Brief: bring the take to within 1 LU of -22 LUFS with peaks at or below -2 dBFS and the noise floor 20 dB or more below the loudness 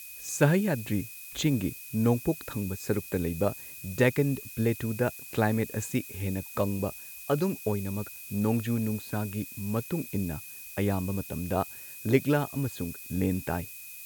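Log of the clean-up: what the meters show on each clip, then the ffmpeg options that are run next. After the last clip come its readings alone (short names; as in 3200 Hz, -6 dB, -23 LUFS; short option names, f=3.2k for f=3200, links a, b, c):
steady tone 2500 Hz; tone level -49 dBFS; noise floor -44 dBFS; noise floor target -50 dBFS; loudness -30.0 LUFS; peak -8.0 dBFS; loudness target -22.0 LUFS
-> -af "bandreject=f=2.5k:w=30"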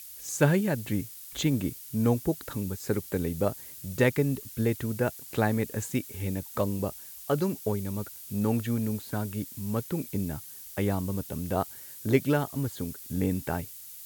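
steady tone none; noise floor -45 dBFS; noise floor target -50 dBFS
-> -af "afftdn=nr=6:nf=-45"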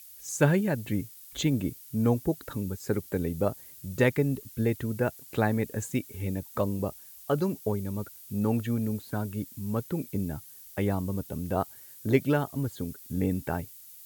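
noise floor -49 dBFS; noise floor target -50 dBFS
-> -af "afftdn=nr=6:nf=-49"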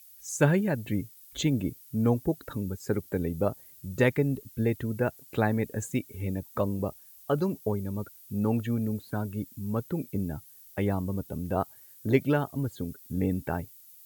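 noise floor -53 dBFS; loudness -30.0 LUFS; peak -8.5 dBFS; loudness target -22.0 LUFS
-> -af "volume=8dB,alimiter=limit=-2dB:level=0:latency=1"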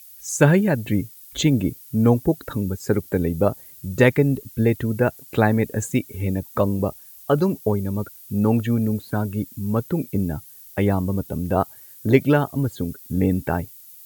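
loudness -22.0 LUFS; peak -2.0 dBFS; noise floor -45 dBFS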